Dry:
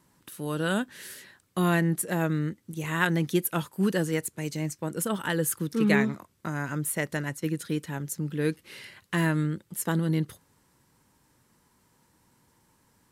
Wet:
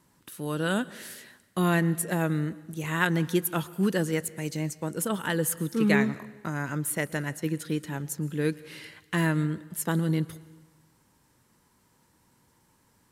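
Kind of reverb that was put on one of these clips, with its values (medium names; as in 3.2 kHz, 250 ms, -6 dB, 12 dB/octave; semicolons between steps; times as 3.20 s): plate-style reverb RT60 1.2 s, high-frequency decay 0.9×, pre-delay 105 ms, DRR 19 dB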